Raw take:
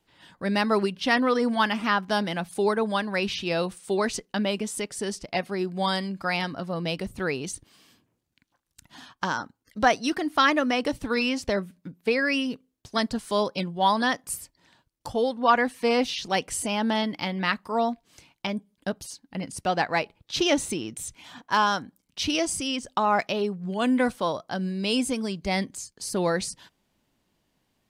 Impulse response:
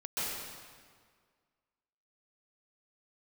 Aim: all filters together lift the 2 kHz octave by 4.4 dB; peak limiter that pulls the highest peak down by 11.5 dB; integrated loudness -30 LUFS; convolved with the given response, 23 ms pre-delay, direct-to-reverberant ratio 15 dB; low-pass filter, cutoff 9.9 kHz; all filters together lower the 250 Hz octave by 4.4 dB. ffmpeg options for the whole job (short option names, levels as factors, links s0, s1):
-filter_complex "[0:a]lowpass=9900,equalizer=f=250:t=o:g=-5.5,equalizer=f=2000:t=o:g=5.5,alimiter=limit=0.158:level=0:latency=1,asplit=2[s0][s1];[1:a]atrim=start_sample=2205,adelay=23[s2];[s1][s2]afir=irnorm=-1:irlink=0,volume=0.0891[s3];[s0][s3]amix=inputs=2:normalize=0,volume=0.841"